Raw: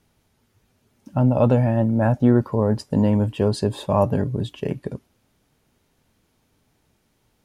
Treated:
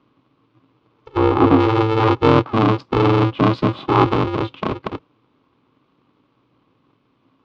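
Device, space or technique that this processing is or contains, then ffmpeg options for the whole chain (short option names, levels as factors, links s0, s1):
ring modulator pedal into a guitar cabinet: -filter_complex "[0:a]aeval=exprs='val(0)*sgn(sin(2*PI*220*n/s))':c=same,highpass=80,equalizer=f=80:t=q:w=4:g=-7,equalizer=f=120:t=q:w=4:g=7,equalizer=f=270:t=q:w=4:g=10,equalizer=f=690:t=q:w=4:g=-6,equalizer=f=1100:t=q:w=4:g=9,equalizer=f=1800:t=q:w=4:g=-8,lowpass=f=3600:w=0.5412,lowpass=f=3600:w=1.3066,asettb=1/sr,asplit=3[s0][s1][s2];[s0]atrim=end=1.174[s3];[s1]atrim=start=1.17:end=1.6,asetpts=PTS-STARTPTS,afade=t=in:d=0.004:c=qsin,afade=t=out:st=0.426:d=0.004:c=qsin,highshelf=f=2500:g=-9.5[s4];[s2]atrim=start=1.596[s5];[s3][s4]acrossfade=d=0.004:c1=hsin:c2=qsin[s6];[s6][s5]acrossfade=d=0.004:c1=qsin:c2=hsin,volume=1.33"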